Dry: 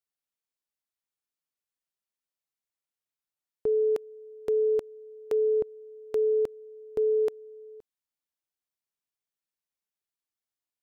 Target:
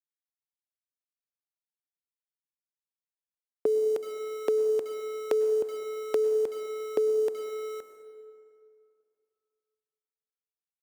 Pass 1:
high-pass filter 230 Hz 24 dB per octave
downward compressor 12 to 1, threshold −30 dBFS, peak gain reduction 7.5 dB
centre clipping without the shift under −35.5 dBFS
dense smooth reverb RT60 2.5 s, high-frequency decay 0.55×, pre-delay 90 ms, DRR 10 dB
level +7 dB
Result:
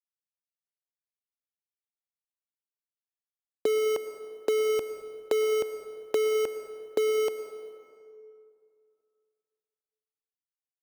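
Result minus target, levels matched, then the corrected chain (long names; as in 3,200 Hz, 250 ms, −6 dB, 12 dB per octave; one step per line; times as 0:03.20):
centre clipping without the shift: distortion +10 dB
high-pass filter 230 Hz 24 dB per octave
downward compressor 12 to 1, threshold −30 dBFS, peak gain reduction 7.5 dB
centre clipping without the shift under −46.5 dBFS
dense smooth reverb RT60 2.5 s, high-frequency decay 0.55×, pre-delay 90 ms, DRR 10 dB
level +7 dB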